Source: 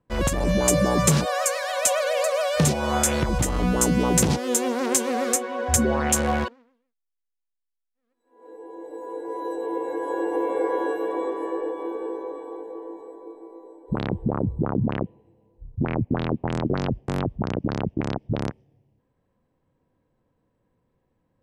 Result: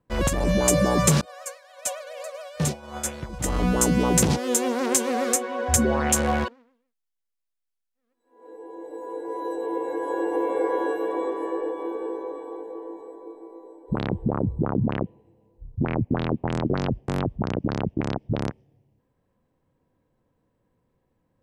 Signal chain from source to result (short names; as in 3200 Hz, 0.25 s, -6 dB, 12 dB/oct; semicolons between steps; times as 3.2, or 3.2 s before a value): 1.21–3.44 expander -13 dBFS